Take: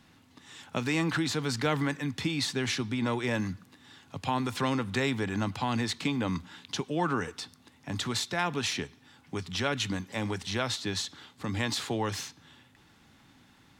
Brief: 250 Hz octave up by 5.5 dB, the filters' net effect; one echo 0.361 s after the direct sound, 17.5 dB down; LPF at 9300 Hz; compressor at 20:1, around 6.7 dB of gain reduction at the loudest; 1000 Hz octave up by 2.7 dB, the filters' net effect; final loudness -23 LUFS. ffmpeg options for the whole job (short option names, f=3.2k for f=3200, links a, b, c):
-af "lowpass=9.3k,equalizer=f=250:t=o:g=6.5,equalizer=f=1k:t=o:g=3,acompressor=threshold=-27dB:ratio=20,aecho=1:1:361:0.133,volume=10dB"